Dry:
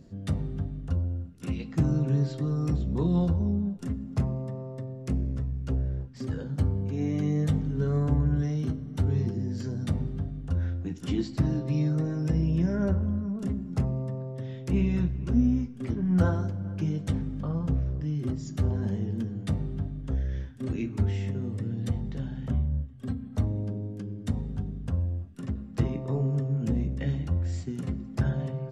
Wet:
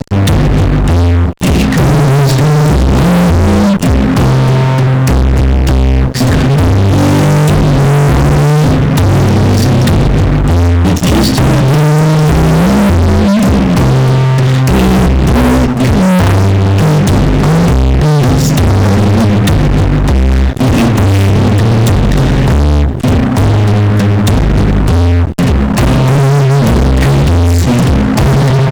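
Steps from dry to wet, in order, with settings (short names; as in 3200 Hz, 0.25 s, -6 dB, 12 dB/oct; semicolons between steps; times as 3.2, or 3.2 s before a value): comb 1.1 ms, depth 72%; fuzz box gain 45 dB, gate -45 dBFS; gain +7 dB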